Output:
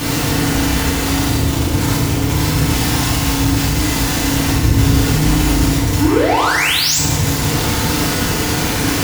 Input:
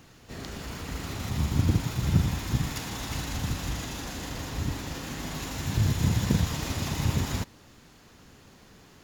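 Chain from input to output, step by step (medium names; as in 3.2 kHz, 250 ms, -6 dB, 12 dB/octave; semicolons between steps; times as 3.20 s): one-bit comparator; 4.46–5.63 s: bass shelf 160 Hz +11 dB; 6.00–6.98 s: painted sound rise 270–8100 Hz -17 dBFS; overload inside the chain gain 26 dB; FDN reverb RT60 1.3 s, low-frequency decay 1.5×, high-frequency decay 0.8×, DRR -6.5 dB; trim +4.5 dB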